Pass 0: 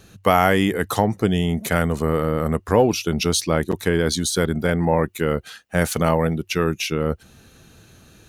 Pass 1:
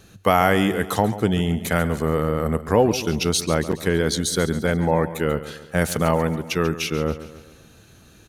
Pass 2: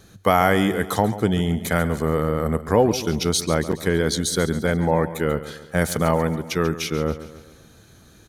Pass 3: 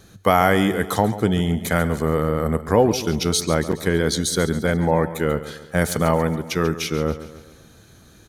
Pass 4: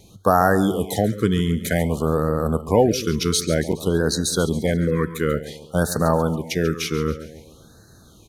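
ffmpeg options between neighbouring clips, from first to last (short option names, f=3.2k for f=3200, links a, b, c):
-af "aecho=1:1:139|278|417|556|695:0.2|0.0978|0.0479|0.0235|0.0115,volume=-1dB"
-af "bandreject=f=2.7k:w=6.9"
-af "bandreject=f=433.4:t=h:w=4,bandreject=f=866.8:t=h:w=4,bandreject=f=1.3002k:t=h:w=4,bandreject=f=1.7336k:t=h:w=4,bandreject=f=2.167k:t=h:w=4,bandreject=f=2.6004k:t=h:w=4,bandreject=f=3.0338k:t=h:w=4,bandreject=f=3.4672k:t=h:w=4,bandreject=f=3.9006k:t=h:w=4,bandreject=f=4.334k:t=h:w=4,bandreject=f=4.7674k:t=h:w=4,bandreject=f=5.2008k:t=h:w=4,bandreject=f=5.6342k:t=h:w=4,bandreject=f=6.0676k:t=h:w=4,bandreject=f=6.501k:t=h:w=4,bandreject=f=6.9344k:t=h:w=4,bandreject=f=7.3678k:t=h:w=4,bandreject=f=7.8012k:t=h:w=4,bandreject=f=8.2346k:t=h:w=4,bandreject=f=8.668k:t=h:w=4,volume=1dB"
-af "afftfilt=real='re*(1-between(b*sr/1024,680*pow(2700/680,0.5+0.5*sin(2*PI*0.54*pts/sr))/1.41,680*pow(2700/680,0.5+0.5*sin(2*PI*0.54*pts/sr))*1.41))':imag='im*(1-between(b*sr/1024,680*pow(2700/680,0.5+0.5*sin(2*PI*0.54*pts/sr))/1.41,680*pow(2700/680,0.5+0.5*sin(2*PI*0.54*pts/sr))*1.41))':win_size=1024:overlap=0.75"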